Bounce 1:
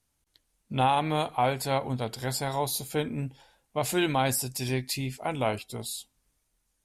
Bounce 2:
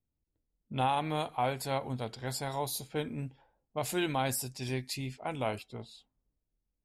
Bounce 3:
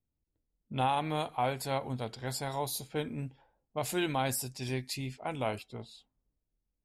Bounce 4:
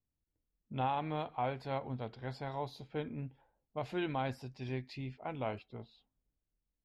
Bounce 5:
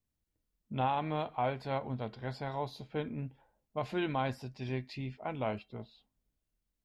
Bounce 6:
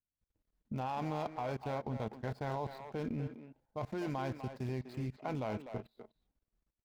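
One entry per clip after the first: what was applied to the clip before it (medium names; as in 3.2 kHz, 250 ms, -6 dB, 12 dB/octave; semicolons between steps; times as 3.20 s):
level-controlled noise filter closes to 430 Hz, open at -26.5 dBFS; trim -5.5 dB
no audible change
distance through air 270 m; trim -3.5 dB
feedback comb 210 Hz, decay 0.16 s, harmonics odd, mix 50%; trim +8 dB
median filter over 15 samples; level held to a coarse grid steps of 21 dB; speakerphone echo 250 ms, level -7 dB; trim +5 dB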